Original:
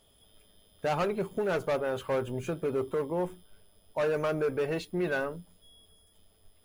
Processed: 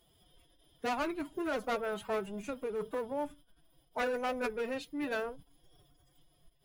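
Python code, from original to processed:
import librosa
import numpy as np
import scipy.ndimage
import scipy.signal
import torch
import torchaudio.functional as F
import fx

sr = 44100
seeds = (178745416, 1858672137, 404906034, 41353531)

y = fx.dynamic_eq(x, sr, hz=200.0, q=0.87, threshold_db=-46.0, ratio=4.0, max_db=-6)
y = fx.pitch_keep_formants(y, sr, semitones=8.5)
y = F.gain(torch.from_numpy(y), -3.0).numpy()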